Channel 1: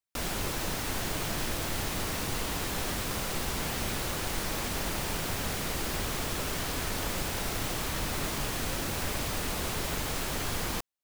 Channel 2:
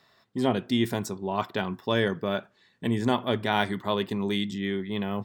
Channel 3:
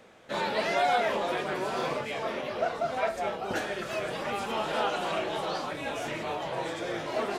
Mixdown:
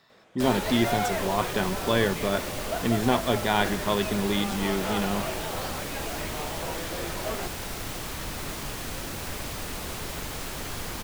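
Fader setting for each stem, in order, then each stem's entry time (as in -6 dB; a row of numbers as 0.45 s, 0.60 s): -2.0 dB, +1.0 dB, -3.0 dB; 0.25 s, 0.00 s, 0.10 s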